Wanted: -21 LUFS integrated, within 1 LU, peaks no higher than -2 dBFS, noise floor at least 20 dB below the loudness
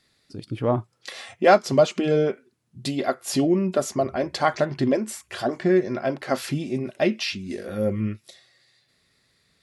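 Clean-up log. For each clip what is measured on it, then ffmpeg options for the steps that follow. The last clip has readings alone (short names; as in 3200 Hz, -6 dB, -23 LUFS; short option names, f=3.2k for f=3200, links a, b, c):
loudness -24.0 LUFS; peak -4.0 dBFS; loudness target -21.0 LUFS
-> -af "volume=3dB,alimiter=limit=-2dB:level=0:latency=1"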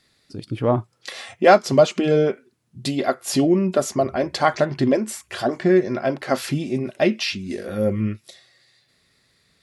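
loudness -21.0 LUFS; peak -2.0 dBFS; noise floor -64 dBFS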